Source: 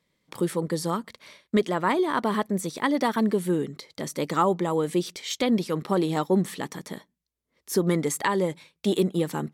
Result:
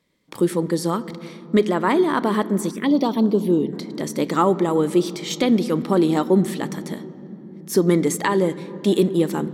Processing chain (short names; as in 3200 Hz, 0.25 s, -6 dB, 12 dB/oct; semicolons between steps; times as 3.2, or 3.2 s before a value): on a send at -15 dB: reverb RT60 3.5 s, pre-delay 4 ms; 2.71–3.73 on the sum: envelope phaser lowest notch 590 Hz, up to 2000 Hz, full sweep at -18.5 dBFS; bell 310 Hz +5 dB 0.83 oct; gain +3 dB